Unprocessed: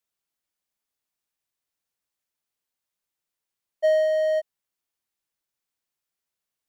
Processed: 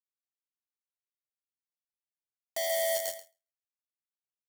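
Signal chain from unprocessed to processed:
four-comb reverb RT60 2.7 s, combs from 28 ms, DRR 3.5 dB
time stretch by overlap-add 0.67×, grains 22 ms
log-companded quantiser 2 bits
bass and treble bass +1 dB, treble +13 dB
repeating echo 135 ms, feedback 37%, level −6 dB
every ending faded ahead of time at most 220 dB per second
level −7.5 dB

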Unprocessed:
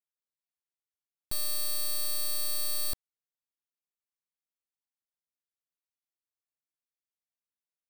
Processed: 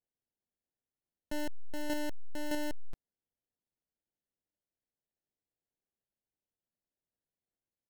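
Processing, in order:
comb filter 5.6 ms, depth 75%
decimation without filtering 37×
level −7.5 dB

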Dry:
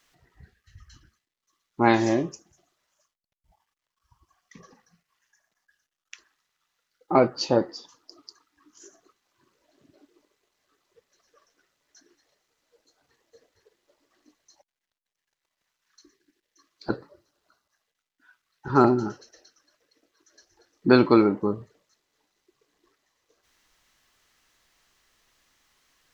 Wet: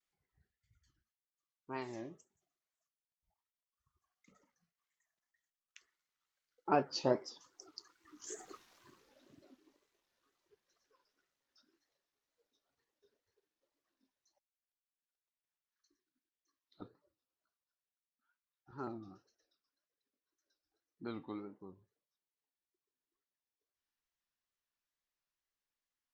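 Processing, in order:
source passing by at 0:08.60, 21 m/s, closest 3.6 metres
tape wow and flutter 120 cents
level +9.5 dB

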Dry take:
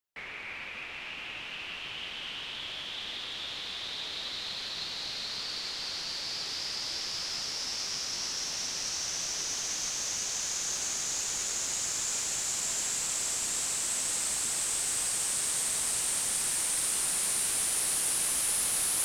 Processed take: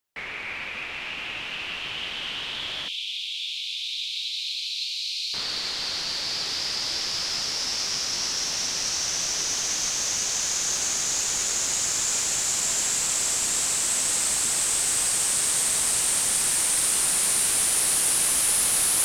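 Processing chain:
0:02.88–0:05.34: Butterworth high-pass 2,300 Hz 96 dB per octave
level +7 dB

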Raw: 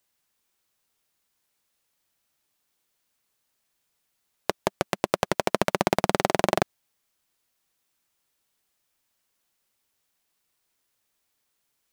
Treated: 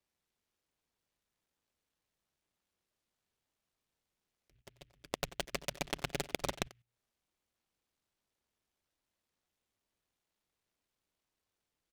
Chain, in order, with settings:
sub-octave generator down 2 octaves, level −3 dB
Butterworth low-pass 2,800 Hz 36 dB per octave
mains-hum notches 60/120 Hz
0:04.54–0:06.61: comb filter 7.1 ms, depth 98%
volume swells 418 ms
output level in coarse steps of 18 dB
far-end echo of a speakerphone 90 ms, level −18 dB
short delay modulated by noise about 2,300 Hz, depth 0.22 ms
level +1.5 dB

